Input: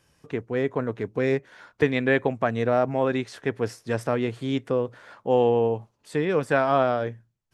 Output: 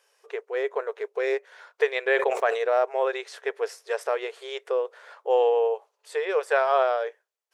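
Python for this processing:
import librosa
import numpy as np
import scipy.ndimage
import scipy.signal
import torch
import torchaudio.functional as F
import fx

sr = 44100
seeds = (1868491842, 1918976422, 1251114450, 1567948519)

y = fx.brickwall_highpass(x, sr, low_hz=380.0)
y = fx.sustainer(y, sr, db_per_s=64.0, at=(2.12, 2.65))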